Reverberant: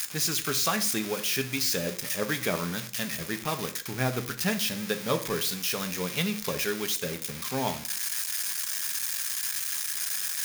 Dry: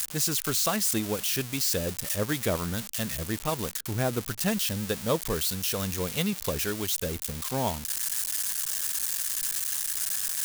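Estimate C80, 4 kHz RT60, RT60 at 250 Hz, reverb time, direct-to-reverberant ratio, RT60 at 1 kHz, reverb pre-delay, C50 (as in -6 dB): 18.5 dB, 0.40 s, 0.45 s, 0.45 s, 7.5 dB, 0.45 s, 3 ms, 14.0 dB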